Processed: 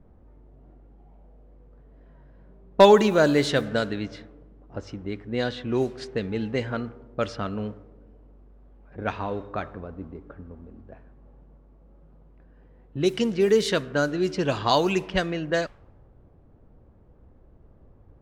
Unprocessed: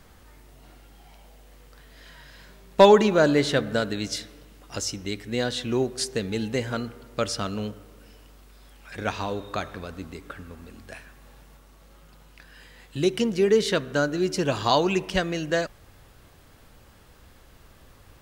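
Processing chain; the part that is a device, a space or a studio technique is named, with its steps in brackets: cassette deck with a dynamic noise filter (white noise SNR 28 dB; low-pass opened by the level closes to 470 Hz, open at -17.5 dBFS)

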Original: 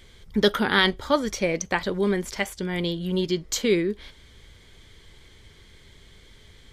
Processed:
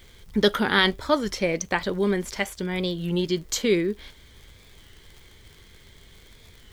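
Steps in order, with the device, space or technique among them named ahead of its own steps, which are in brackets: warped LP (record warp 33 1/3 rpm, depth 100 cents; crackle 82/s -39 dBFS; white noise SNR 40 dB)

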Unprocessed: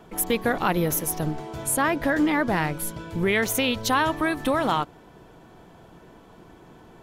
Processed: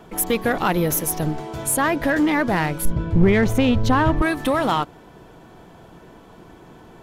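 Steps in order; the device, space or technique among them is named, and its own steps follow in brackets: 2.85–4.22 RIAA curve playback; parallel distortion (in parallel at -4.5 dB: hard clip -21.5 dBFS, distortion -7 dB)

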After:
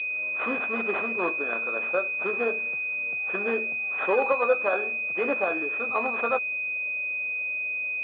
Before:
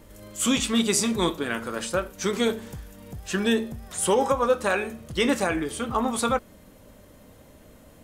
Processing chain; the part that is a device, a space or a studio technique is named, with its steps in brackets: toy sound module (decimation joined by straight lines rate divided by 4×; pulse-width modulation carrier 2500 Hz; speaker cabinet 650–3600 Hz, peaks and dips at 890 Hz -9 dB, 1800 Hz -3 dB, 3500 Hz +6 dB); gain +5.5 dB

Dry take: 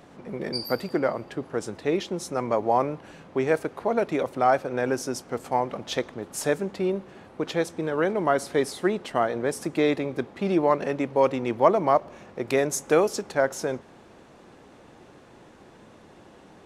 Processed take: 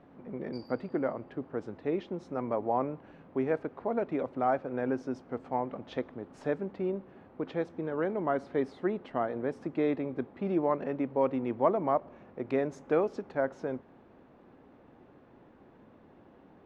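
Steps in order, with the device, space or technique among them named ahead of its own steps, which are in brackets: phone in a pocket (LPF 3300 Hz 12 dB/oct; bell 260 Hz +5.5 dB 0.25 oct; high shelf 2300 Hz -10.5 dB); gain -6.5 dB

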